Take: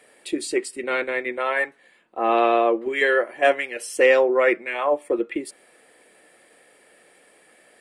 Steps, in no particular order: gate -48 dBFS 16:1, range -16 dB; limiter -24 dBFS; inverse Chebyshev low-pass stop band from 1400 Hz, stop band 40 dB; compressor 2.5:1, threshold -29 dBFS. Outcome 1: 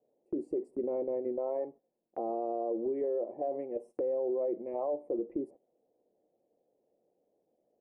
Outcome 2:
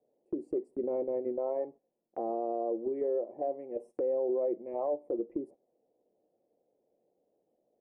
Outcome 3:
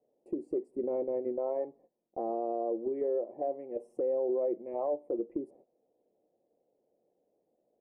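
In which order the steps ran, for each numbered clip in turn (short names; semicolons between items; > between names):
inverse Chebyshev low-pass > limiter > gate > compressor; inverse Chebyshev low-pass > compressor > limiter > gate; gate > inverse Chebyshev low-pass > compressor > limiter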